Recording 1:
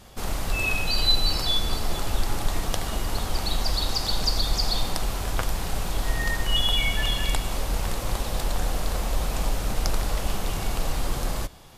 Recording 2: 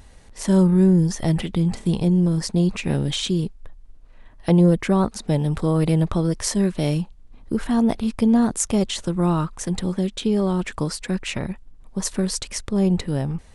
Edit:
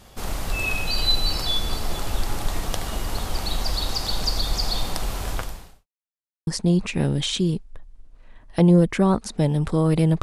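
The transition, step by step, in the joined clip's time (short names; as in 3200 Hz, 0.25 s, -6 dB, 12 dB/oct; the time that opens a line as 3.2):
recording 1
5.32–5.87 fade out quadratic
5.87–6.47 mute
6.47 switch to recording 2 from 2.37 s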